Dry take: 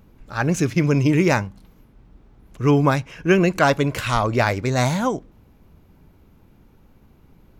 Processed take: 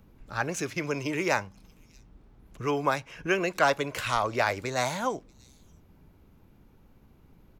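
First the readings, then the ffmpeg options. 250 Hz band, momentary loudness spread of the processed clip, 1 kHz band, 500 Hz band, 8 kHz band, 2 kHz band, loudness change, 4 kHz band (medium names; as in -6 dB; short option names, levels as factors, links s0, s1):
-14.0 dB, 8 LU, -5.5 dB, -8.0 dB, -5.0 dB, -5.0 dB, -9.0 dB, -5.0 dB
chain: -filter_complex "[0:a]acrossover=split=400|600|3100[s0][s1][s2][s3];[s0]acompressor=threshold=0.0224:ratio=6[s4];[s3]aecho=1:1:634:0.0841[s5];[s4][s1][s2][s5]amix=inputs=4:normalize=0,volume=0.562"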